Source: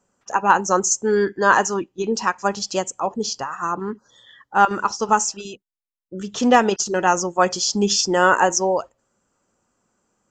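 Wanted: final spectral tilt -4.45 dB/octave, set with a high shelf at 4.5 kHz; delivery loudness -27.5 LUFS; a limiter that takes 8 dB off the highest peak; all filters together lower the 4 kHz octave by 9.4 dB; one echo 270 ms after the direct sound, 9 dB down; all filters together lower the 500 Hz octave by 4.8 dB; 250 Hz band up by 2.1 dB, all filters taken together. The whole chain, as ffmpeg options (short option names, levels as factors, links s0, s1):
-af "equalizer=f=250:t=o:g=4.5,equalizer=f=500:t=o:g=-7.5,equalizer=f=4000:t=o:g=-7.5,highshelf=f=4500:g=-8.5,alimiter=limit=0.266:level=0:latency=1,aecho=1:1:270:0.355,volume=0.668"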